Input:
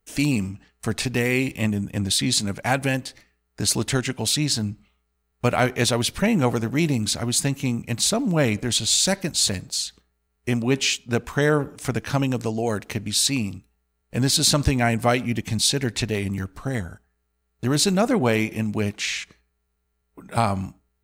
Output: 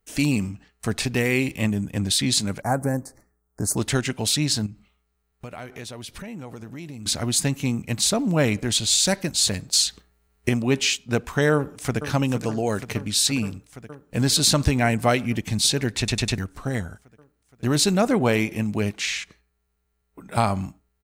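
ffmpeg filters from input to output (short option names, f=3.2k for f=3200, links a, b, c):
-filter_complex "[0:a]asettb=1/sr,asplit=3[a][b][c];[a]atrim=end=2.624[d];[b]atrim=start=2.62:end=3.77,asetpts=PTS-STARTPTS,afade=t=in:d=0.004:c=qsin,afade=t=out:st=1.146:d=0.004:c=qsin,asuperstop=centerf=3100:order=4:qfactor=0.52[e];[c]atrim=start=3.766[f];[d][e]acrossfade=d=0.004:c1=hsin:c2=qsin[g];[g][f]acrossfade=d=0.004:c1=qsin:c2=hsin,asettb=1/sr,asplit=3[h][i][j];[h]atrim=end=4.664[k];[i]atrim=start=4.66:end=7.06,asetpts=PTS-STARTPTS,afade=t=in:d=0.004:c=qsin,afade=t=out:st=2.396:d=0.004:c=qsin,acompressor=threshold=-36dB:ratio=4:attack=3.2:release=140:knee=1:detection=peak[l];[j]atrim=start=7.056[m];[k][l]acrossfade=d=0.004:c1=hsin:c2=qsin[n];[n][m]acrossfade=d=0.004:c1=qsin:c2=hsin,asettb=1/sr,asplit=3[o][p][q];[o]atrim=end=9.734[r];[p]atrim=start=9.73:end=10.49,asetpts=PTS-STARTPTS,afade=t=in:d=0.004:c=qsin,afade=t=out:st=0.756:d=0.004:c=qsin,acontrast=83[s];[q]atrim=start=10.486[t];[r][s]acrossfade=d=0.004:c1=hsin:c2=qsin[u];[u][t]acrossfade=d=0.004:c1=qsin:c2=hsin,asplit=2[v][w];[w]afade=t=in:st=11.54:d=0.01,afade=t=out:st=12.06:d=0.01,aecho=0:1:470|940|1410|1880|2350|2820|3290|3760|4230|4700|5170|5640:0.298538|0.238831|0.191064|0.152852|0.122281|0.097825|0.07826|0.062608|0.0500864|0.0400691|0.0320553|0.0256442[x];[v][x]amix=inputs=2:normalize=0,asplit=5[y][z][aa][ab][ac];[y]atrim=end=16.082[ad];[z]atrim=start=15.978:end=16.082[ae];[aa]atrim=start=15.978:end=16.082[af];[ab]atrim=start=15.978:end=16.082[ag];[ac]atrim=start=16.378[ah];[ad][ae]acrossfade=d=0.004:c1=hsin:c2=hsin[ai];[ai][af]acrossfade=d=0.004:c1=hsin:c2=hsin[aj];[aj][ag]acrossfade=d=0.004:c1=hsin:c2=hsin[ak];[ak][ah]acrossfade=d=0.004:c1=hsin:c2=hsin"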